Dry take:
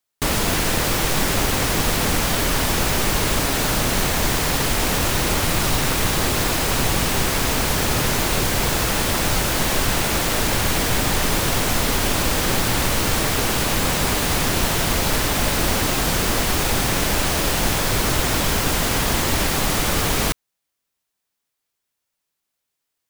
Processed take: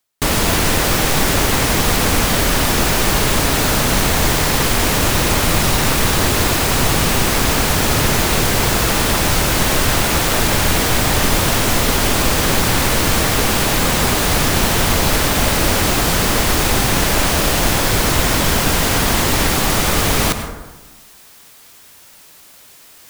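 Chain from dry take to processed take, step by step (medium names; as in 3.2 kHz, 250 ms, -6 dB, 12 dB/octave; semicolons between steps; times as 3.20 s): reverse; upward compressor, threshold -23 dBFS; reverse; plate-style reverb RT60 1.2 s, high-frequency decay 0.4×, pre-delay 85 ms, DRR 7.5 dB; trim +4 dB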